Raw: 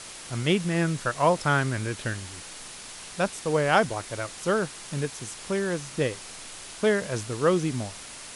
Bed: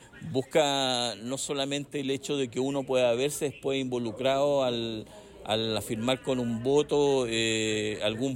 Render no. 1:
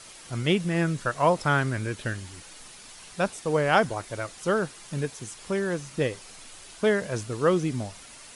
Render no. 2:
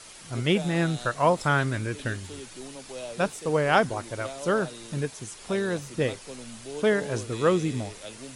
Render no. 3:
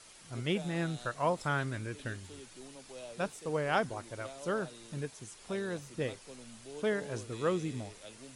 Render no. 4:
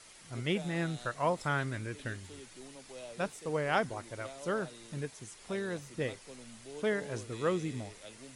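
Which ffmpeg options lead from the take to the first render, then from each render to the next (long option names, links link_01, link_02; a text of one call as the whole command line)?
ffmpeg -i in.wav -af "afftdn=noise_reduction=7:noise_floor=-42" out.wav
ffmpeg -i in.wav -i bed.wav -filter_complex "[1:a]volume=-13.5dB[link_01];[0:a][link_01]amix=inputs=2:normalize=0" out.wav
ffmpeg -i in.wav -af "volume=-9dB" out.wav
ffmpeg -i in.wav -af "equalizer=frequency=2000:width_type=o:width=0.27:gain=4" out.wav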